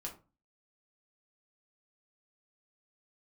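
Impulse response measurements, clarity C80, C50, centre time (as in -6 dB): 16.5 dB, 11.0 dB, 16 ms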